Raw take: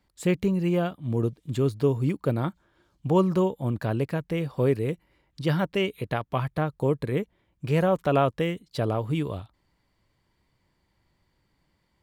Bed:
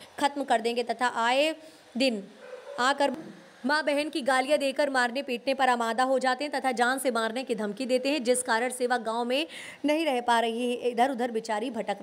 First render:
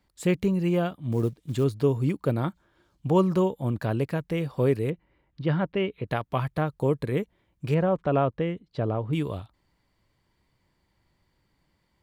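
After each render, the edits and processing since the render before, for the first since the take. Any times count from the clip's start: 1.12–1.64 s: short-mantissa float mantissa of 4-bit; 4.90–6.08 s: distance through air 320 m; 7.74–9.13 s: tape spacing loss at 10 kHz 27 dB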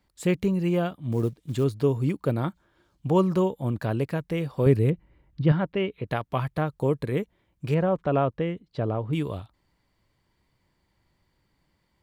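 4.66–5.52 s: bass shelf 200 Hz +11.5 dB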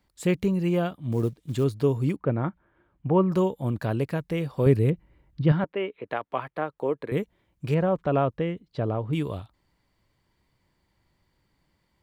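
2.16–3.32 s: low-pass 2.4 kHz 24 dB/octave; 5.64–7.12 s: three-band isolator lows -19 dB, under 270 Hz, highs -15 dB, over 3.1 kHz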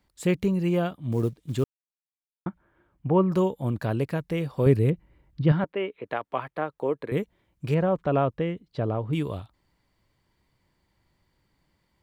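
1.64–2.46 s: mute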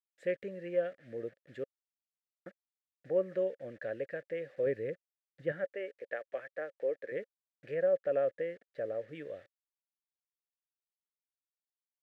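bit crusher 8-bit; two resonant band-passes 980 Hz, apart 1.7 oct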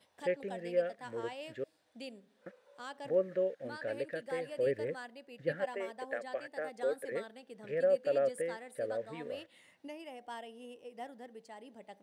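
add bed -21 dB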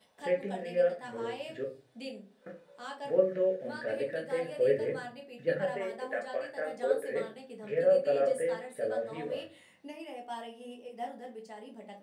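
simulated room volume 170 m³, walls furnished, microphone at 1.5 m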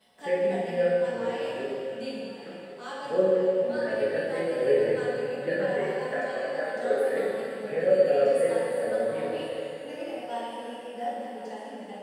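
thinning echo 1069 ms, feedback 69%, high-pass 290 Hz, level -15 dB; plate-style reverb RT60 2.6 s, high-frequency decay 0.95×, DRR -4.5 dB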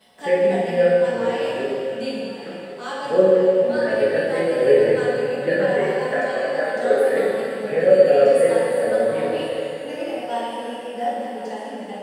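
trim +8 dB

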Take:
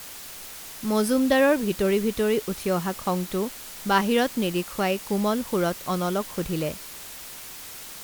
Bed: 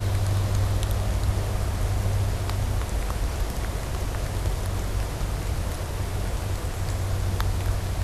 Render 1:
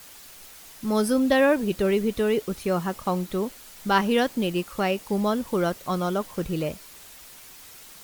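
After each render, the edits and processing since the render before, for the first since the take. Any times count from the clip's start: noise reduction 7 dB, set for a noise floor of -40 dBFS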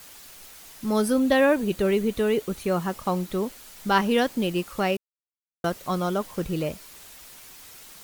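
0.98–2.82 s: band-stop 5.2 kHz; 4.97–5.64 s: mute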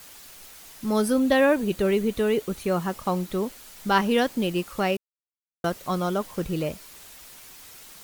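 no audible change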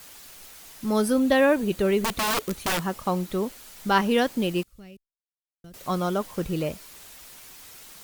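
2.04–2.85 s: integer overflow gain 20 dB; 4.63–5.74 s: amplifier tone stack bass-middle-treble 10-0-1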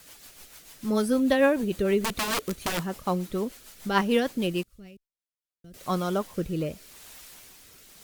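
rotary cabinet horn 6.7 Hz, later 0.85 Hz, at 4.91 s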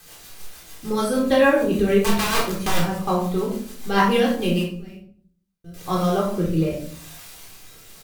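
doubling 30 ms -7 dB; simulated room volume 600 m³, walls furnished, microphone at 3.8 m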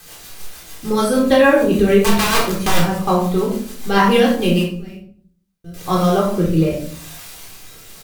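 trim +5.5 dB; peak limiter -2 dBFS, peak gain reduction 3 dB

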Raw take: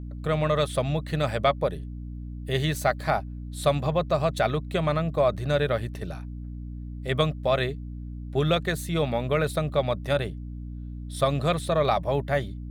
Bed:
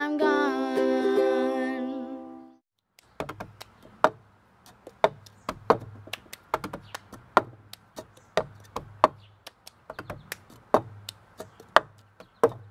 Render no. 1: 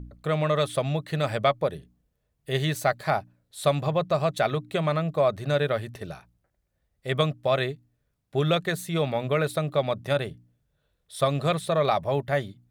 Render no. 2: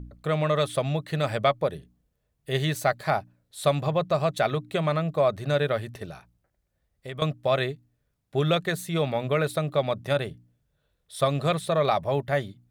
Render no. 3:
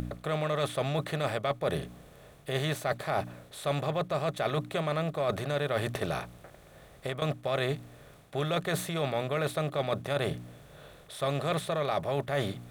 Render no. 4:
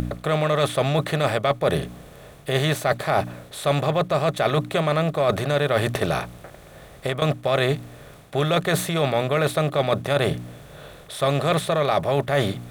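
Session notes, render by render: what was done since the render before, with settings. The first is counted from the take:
de-hum 60 Hz, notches 5
6.05–7.22 s: compression 3:1, threshold -35 dBFS
spectral levelling over time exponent 0.6; reverse; compression, threshold -27 dBFS, peak gain reduction 12.5 dB; reverse
trim +9 dB

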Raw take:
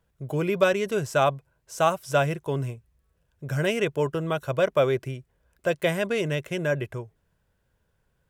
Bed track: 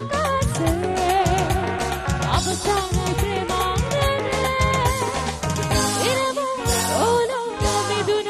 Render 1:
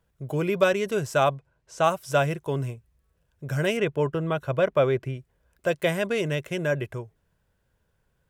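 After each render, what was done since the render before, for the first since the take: 1.35–1.84 s: distance through air 65 m; 3.77–5.17 s: tone controls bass +2 dB, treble -9 dB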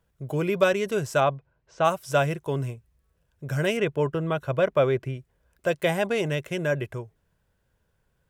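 1.20–1.85 s: distance through air 160 m; 5.89–6.30 s: peaking EQ 800 Hz +12 dB 0.3 oct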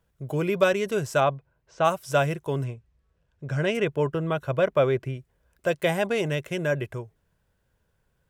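2.64–3.75 s: distance through air 82 m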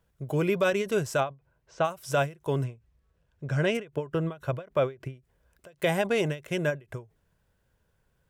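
peak limiter -15 dBFS, peak gain reduction 6 dB; endings held to a fixed fall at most 220 dB/s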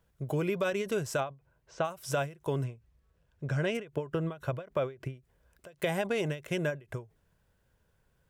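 compression 2.5:1, threshold -29 dBFS, peak gain reduction 6.5 dB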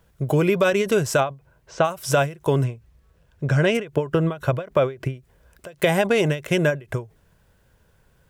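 trim +11.5 dB

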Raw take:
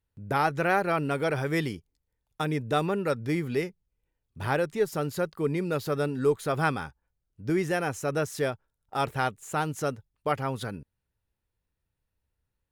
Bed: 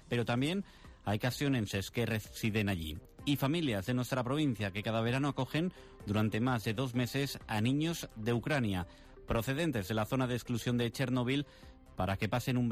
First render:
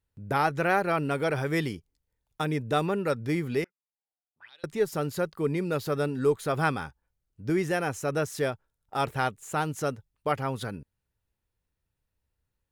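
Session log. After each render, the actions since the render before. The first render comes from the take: 3.64–4.64 s: auto-wah 710–3800 Hz, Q 15, up, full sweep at -26.5 dBFS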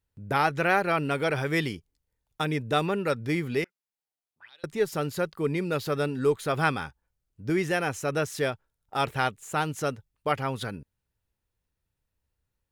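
dynamic bell 2.9 kHz, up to +5 dB, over -44 dBFS, Q 0.8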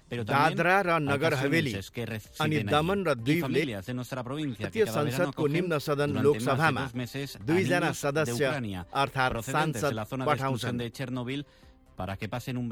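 add bed -1 dB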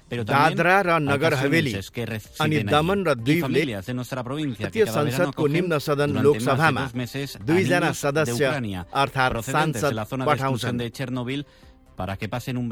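trim +5.5 dB

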